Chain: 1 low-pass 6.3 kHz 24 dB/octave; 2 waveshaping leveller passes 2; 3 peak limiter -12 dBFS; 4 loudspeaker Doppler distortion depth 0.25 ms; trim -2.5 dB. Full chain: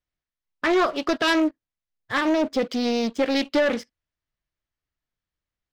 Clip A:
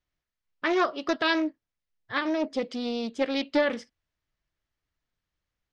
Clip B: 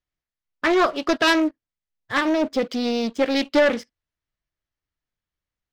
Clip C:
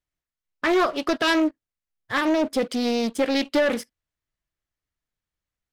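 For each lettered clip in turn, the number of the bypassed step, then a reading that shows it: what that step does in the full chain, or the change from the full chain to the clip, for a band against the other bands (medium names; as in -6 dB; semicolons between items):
2, crest factor change +5.0 dB; 3, crest factor change +2.5 dB; 1, 8 kHz band +2.0 dB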